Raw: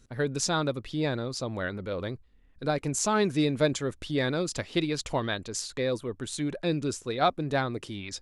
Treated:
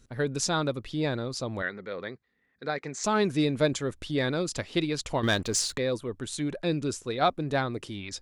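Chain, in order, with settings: 1.62–3.04 s: cabinet simulation 240–5900 Hz, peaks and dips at 300 Hz -7 dB, 590 Hz -5 dB, 950 Hz -4 dB, 1.9 kHz +8 dB, 2.9 kHz -8 dB, 5.2 kHz -4 dB; 5.23–5.78 s: waveshaping leveller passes 2

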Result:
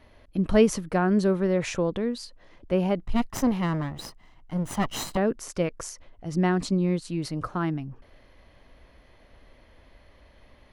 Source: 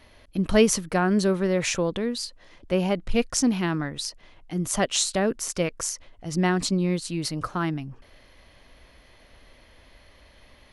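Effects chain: 3.02–5.17 s: comb filter that takes the minimum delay 1 ms; treble shelf 2.2 kHz -10 dB

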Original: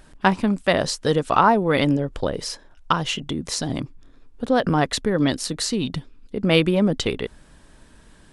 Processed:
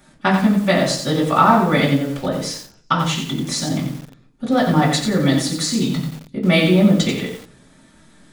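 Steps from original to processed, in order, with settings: tone controls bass +1 dB, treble +12 dB; reverberation RT60 0.45 s, pre-delay 3 ms, DRR -10 dB; bit-crushed delay 89 ms, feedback 35%, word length 4-bit, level -6 dB; trim -11 dB

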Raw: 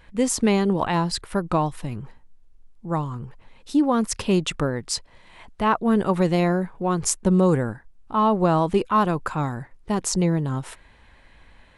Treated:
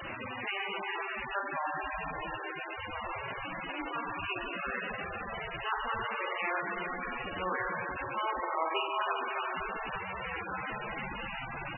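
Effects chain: tracing distortion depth 0.054 ms; high-pass 1.4 kHz 12 dB/octave; treble shelf 4.8 kHz +11.5 dB; compression 3:1, threshold -29 dBFS, peak gain reduction 14 dB; slow attack 121 ms; random-step tremolo, depth 55%; word length cut 6-bit, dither triangular; brick-wall FIR low-pass 8.1 kHz; speakerphone echo 330 ms, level -16 dB; spring tank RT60 3.8 s, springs 43 ms, chirp 45 ms, DRR -0.5 dB; trim +2.5 dB; MP3 8 kbps 24 kHz

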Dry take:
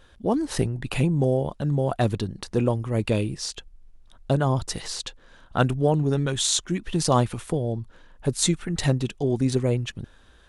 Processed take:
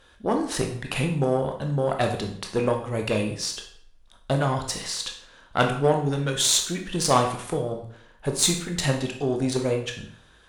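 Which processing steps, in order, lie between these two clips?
Chebyshev shaper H 4 -24 dB, 6 -20 dB, 7 -33 dB, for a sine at -4 dBFS; bass shelf 390 Hz -6.5 dB; on a send: reverberation RT60 0.60 s, pre-delay 16 ms, DRR 3 dB; on the sum: trim +2.5 dB

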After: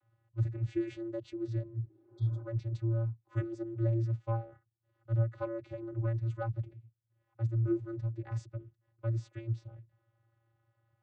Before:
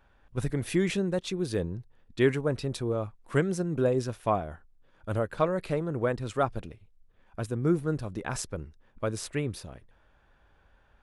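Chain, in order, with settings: vocoder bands 16, square 114 Hz; spectral replace 1.86–2.40 s, 240–3200 Hz both; trim -3.5 dB

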